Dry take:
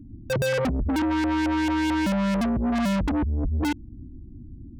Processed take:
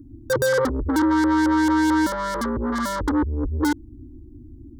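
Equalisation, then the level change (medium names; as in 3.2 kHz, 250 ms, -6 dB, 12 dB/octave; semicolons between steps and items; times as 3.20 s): bass shelf 110 Hz -10 dB; static phaser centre 690 Hz, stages 6; +8.0 dB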